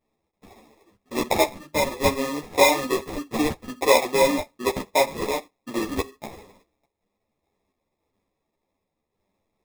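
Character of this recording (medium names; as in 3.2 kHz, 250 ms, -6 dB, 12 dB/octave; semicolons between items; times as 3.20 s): random-step tremolo; aliases and images of a low sample rate 1.5 kHz, jitter 0%; a shimmering, thickened sound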